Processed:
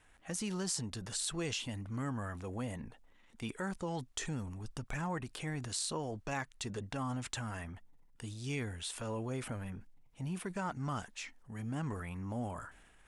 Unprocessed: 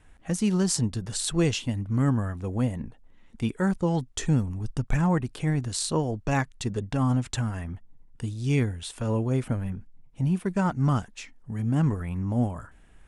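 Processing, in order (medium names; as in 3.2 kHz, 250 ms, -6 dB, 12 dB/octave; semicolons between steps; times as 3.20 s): bass shelf 400 Hz -11.5 dB; compression 3:1, threshold -33 dBFS, peak gain reduction 8 dB; transient shaper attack -2 dB, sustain +5 dB; trim -2 dB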